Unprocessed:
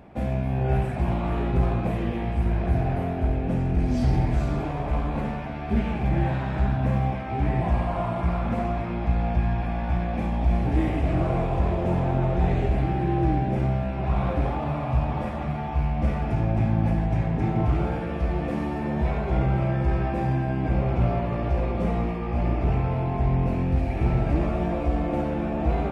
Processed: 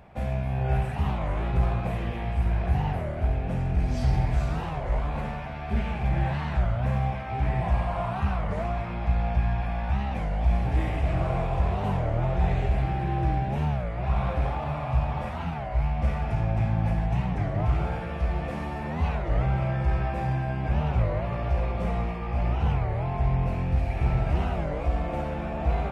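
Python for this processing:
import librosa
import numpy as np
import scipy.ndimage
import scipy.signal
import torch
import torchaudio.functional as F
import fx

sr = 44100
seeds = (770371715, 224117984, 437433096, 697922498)

y = fx.peak_eq(x, sr, hz=290.0, db=-11.0, octaves=1.2)
y = fx.record_warp(y, sr, rpm=33.33, depth_cents=250.0)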